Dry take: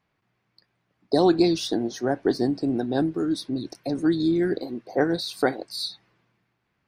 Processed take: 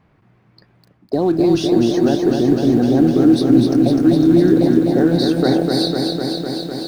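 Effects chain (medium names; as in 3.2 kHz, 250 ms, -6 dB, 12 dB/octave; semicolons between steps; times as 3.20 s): bass shelf 370 Hz +7 dB; in parallel at -3.5 dB: short-mantissa float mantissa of 2-bit; on the sum: treble shelf 2.7 kHz -12 dB; reverse; compression 6:1, threshold -21 dBFS, peak gain reduction 14 dB; reverse; loudness maximiser +18 dB; bit-crushed delay 252 ms, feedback 80%, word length 7-bit, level -4 dB; trim -7 dB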